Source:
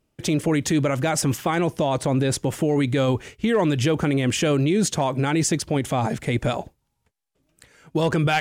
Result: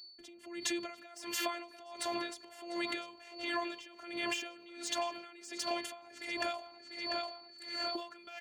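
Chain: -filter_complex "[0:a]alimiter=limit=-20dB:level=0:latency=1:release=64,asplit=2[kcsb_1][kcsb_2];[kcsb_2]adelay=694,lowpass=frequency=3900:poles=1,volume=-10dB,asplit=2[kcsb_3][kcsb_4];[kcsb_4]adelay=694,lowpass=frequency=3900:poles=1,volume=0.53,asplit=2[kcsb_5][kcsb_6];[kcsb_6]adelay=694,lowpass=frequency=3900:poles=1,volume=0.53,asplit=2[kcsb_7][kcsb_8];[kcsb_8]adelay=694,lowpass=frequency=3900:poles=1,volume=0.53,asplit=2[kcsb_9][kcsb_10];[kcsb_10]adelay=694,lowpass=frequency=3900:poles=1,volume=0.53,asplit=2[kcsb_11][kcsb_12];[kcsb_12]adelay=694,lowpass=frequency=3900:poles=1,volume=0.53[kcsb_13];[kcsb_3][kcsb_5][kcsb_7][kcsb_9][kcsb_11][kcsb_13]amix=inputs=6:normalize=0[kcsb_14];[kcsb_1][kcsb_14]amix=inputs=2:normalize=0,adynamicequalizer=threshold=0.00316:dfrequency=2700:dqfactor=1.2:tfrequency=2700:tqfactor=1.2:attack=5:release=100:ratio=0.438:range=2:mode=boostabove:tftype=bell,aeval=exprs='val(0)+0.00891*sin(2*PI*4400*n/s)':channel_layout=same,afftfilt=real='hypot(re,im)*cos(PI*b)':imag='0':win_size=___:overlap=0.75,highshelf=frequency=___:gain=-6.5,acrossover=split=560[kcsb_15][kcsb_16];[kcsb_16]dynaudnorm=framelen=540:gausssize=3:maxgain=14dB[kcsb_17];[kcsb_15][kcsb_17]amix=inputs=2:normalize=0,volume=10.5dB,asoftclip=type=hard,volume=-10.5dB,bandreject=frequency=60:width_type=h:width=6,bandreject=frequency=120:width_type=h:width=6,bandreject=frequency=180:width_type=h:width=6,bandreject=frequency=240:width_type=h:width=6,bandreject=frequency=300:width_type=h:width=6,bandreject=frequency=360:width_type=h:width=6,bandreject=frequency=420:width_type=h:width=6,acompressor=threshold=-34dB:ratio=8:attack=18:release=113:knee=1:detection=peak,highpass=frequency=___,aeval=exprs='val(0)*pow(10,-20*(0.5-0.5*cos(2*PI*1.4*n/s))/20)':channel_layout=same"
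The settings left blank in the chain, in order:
512, 4300, 73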